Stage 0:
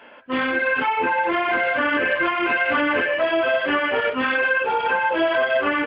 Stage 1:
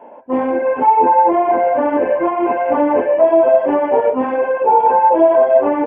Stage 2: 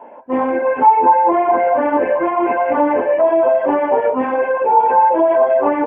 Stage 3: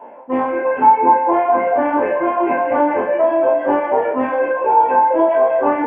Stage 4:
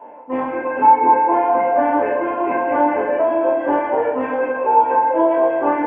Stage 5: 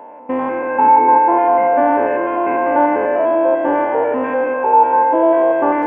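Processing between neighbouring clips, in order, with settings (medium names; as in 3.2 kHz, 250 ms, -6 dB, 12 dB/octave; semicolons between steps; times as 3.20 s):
FFT filter 140 Hz 0 dB, 220 Hz +6 dB, 920 Hz +12 dB, 1.3 kHz -11 dB, 2.3 kHz -11 dB, 3.8 kHz -25 dB, 6.2 kHz -11 dB
peak limiter -6.5 dBFS, peak gain reduction 4.5 dB; sweeping bell 4.6 Hz 940–2200 Hz +7 dB; trim -1 dB
spectral sustain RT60 0.99 s; reverb removal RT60 0.8 s; two-band feedback delay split 570 Hz, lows 729 ms, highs 131 ms, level -12.5 dB; trim -1 dB
FDN reverb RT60 1.9 s, low-frequency decay 1.6×, high-frequency decay 0.9×, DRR 5.5 dB; trim -3 dB
spectrogram pixelated in time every 100 ms; trim +3.5 dB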